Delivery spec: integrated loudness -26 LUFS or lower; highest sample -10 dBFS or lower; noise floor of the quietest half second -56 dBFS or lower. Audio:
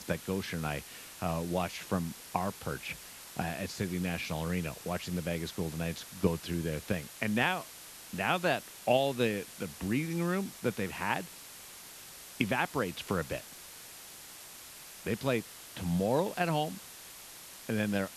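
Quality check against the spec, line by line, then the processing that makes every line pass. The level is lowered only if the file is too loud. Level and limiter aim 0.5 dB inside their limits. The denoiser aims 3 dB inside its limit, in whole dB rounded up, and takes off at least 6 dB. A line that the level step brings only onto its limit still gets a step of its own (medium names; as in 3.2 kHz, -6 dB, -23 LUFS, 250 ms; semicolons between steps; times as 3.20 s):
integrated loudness -33.5 LUFS: pass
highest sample -12.5 dBFS: pass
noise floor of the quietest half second -49 dBFS: fail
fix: noise reduction 10 dB, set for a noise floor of -49 dBFS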